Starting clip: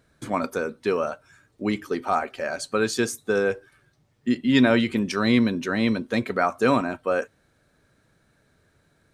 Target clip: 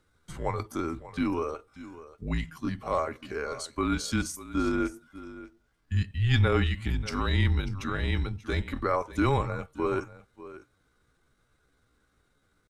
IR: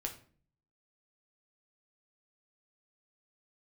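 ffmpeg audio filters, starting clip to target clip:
-af "afreqshift=-150,aecho=1:1:425:0.158,atempo=0.72,volume=0.562"

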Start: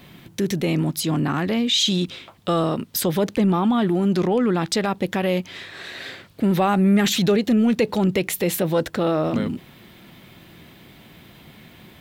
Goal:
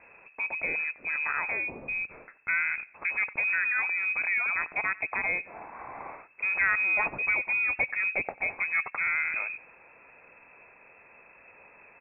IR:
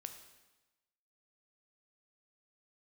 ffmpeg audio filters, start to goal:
-filter_complex "[0:a]equalizer=f=230:w=0.44:g=-9,asplit=2[s0][s1];[s1]adelay=92,lowpass=f=1700:p=1,volume=0.1,asplit=2[s2][s3];[s3]adelay=92,lowpass=f=1700:p=1,volume=0.32,asplit=2[s4][s5];[s5]adelay=92,lowpass=f=1700:p=1,volume=0.32[s6];[s0][s2][s4][s6]amix=inputs=4:normalize=0,lowpass=f=2300:t=q:w=0.5098,lowpass=f=2300:t=q:w=0.6013,lowpass=f=2300:t=q:w=0.9,lowpass=f=2300:t=q:w=2.563,afreqshift=-2700,volume=0.794"

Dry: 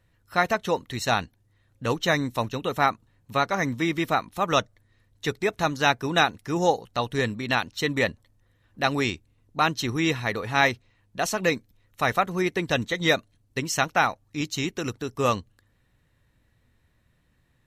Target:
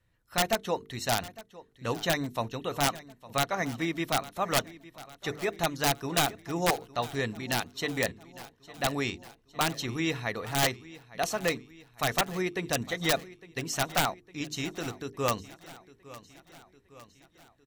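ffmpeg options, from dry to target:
-af "bandreject=f=50:t=h:w=6,bandreject=f=100:t=h:w=6,bandreject=f=150:t=h:w=6,bandreject=f=200:t=h:w=6,bandreject=f=250:t=h:w=6,bandreject=f=300:t=h:w=6,bandreject=f=350:t=h:w=6,bandreject=f=400:t=h:w=6,bandreject=f=450:t=h:w=6,adynamicequalizer=threshold=0.0112:dfrequency=690:dqfactor=6.7:tfrequency=690:tqfactor=6.7:attack=5:release=100:ratio=0.375:range=3:mode=boostabove:tftype=bell,aeval=exprs='(mod(3.55*val(0)+1,2)-1)/3.55':c=same,aecho=1:1:857|1714|2571|3428|4285:0.119|0.0677|0.0386|0.022|0.0125,volume=0.531"

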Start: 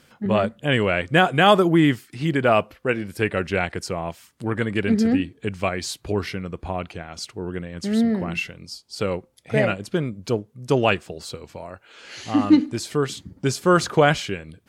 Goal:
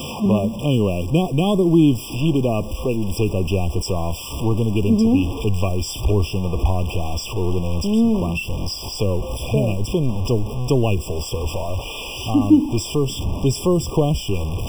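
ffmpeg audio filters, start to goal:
-filter_complex "[0:a]aeval=exprs='val(0)+0.5*0.0473*sgn(val(0))':c=same,asubboost=boost=6.5:cutoff=63,acrossover=split=370|5100[s0][s1][s2];[s1]acompressor=threshold=0.0282:ratio=6[s3];[s2]flanger=delay=10:depth=8.3:regen=70:speed=1.3:shape=sinusoidal[s4];[s0][s3][s4]amix=inputs=3:normalize=0,afftfilt=real='re*eq(mod(floor(b*sr/1024/1200),2),0)':imag='im*eq(mod(floor(b*sr/1024/1200),2),0)':win_size=1024:overlap=0.75,volume=1.88"

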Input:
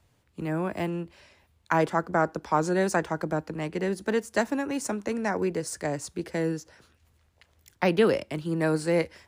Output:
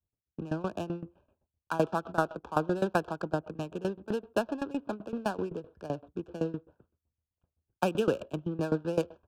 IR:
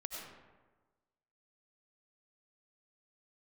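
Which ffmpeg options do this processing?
-filter_complex "[0:a]aresample=8000,aresample=44100,agate=range=0.0224:threshold=0.002:ratio=3:detection=peak,asplit=2[s0][s1];[1:a]atrim=start_sample=2205,atrim=end_sample=6174[s2];[s1][s2]afir=irnorm=-1:irlink=0,volume=0.251[s3];[s0][s3]amix=inputs=2:normalize=0,adynamicsmooth=sensitivity=6.5:basefreq=650,asuperstop=centerf=2000:order=8:qfactor=2.6,aeval=exprs='val(0)*pow(10,-19*if(lt(mod(7.8*n/s,1),2*abs(7.8)/1000),1-mod(7.8*n/s,1)/(2*abs(7.8)/1000),(mod(7.8*n/s,1)-2*abs(7.8)/1000)/(1-2*abs(7.8)/1000))/20)':c=same"

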